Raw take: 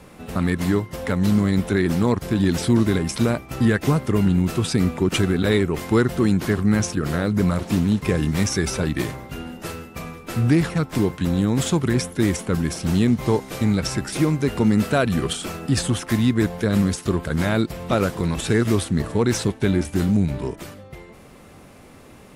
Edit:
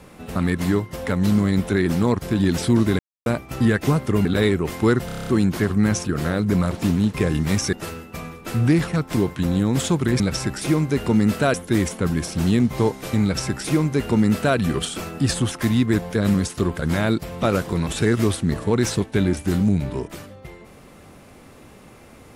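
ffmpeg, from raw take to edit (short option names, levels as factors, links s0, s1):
-filter_complex "[0:a]asplit=14[s0][s1][s2][s3][s4][s5][s6][s7][s8][s9][s10][s11][s12][s13];[s0]atrim=end=2.99,asetpts=PTS-STARTPTS,afade=t=out:st=2.986:d=0.004:c=hsin[s14];[s1]atrim=start=2.99:end=3.26,asetpts=PTS-STARTPTS,volume=0[s15];[s2]atrim=start=3.26:end=4.252,asetpts=PTS-STARTPTS,afade=t=in:d=0.004:c=hsin[s16];[s3]atrim=start=5.338:end=6.182[s17];[s4]atrim=start=6.148:end=6.182[s18];[s5]atrim=start=6.148:end=6.182[s19];[s6]atrim=start=6.148:end=6.182[s20];[s7]atrim=start=6.148:end=6.182[s21];[s8]atrim=start=6.148:end=6.182[s22];[s9]atrim=start=6.148:end=6.182[s23];[s10]atrim=start=6.148:end=8.612[s24];[s11]atrim=start=9.548:end=12.022[s25];[s12]atrim=start=13.708:end=15.052[s26];[s13]atrim=start=12.018[s27];[s14][s15][s16]concat=n=3:v=0:a=1[s28];[s28][s17]acrossfade=d=0.004:c1=hsin:c2=hsin[s29];[s29][s18]acrossfade=d=0.004:c1=hsin:c2=hsin[s30];[s30][s19]acrossfade=d=0.004:c1=hsin:c2=hsin[s31];[s31][s20]acrossfade=d=0.004:c1=hsin:c2=hsin[s32];[s32][s21]acrossfade=d=0.004:c1=hsin:c2=hsin[s33];[s33][s22]acrossfade=d=0.004:c1=hsin:c2=hsin[s34];[s34][s23]acrossfade=d=0.004:c1=hsin:c2=hsin[s35];[s35][s24]acrossfade=d=0.004:c1=hsin:c2=hsin[s36];[s36][s25]acrossfade=d=0.004:c1=hsin:c2=hsin[s37];[s37][s26]acrossfade=d=0.004:c1=hsin:c2=hsin[s38];[s38][s27]acrossfade=d=0.004:c1=hsin:c2=hsin"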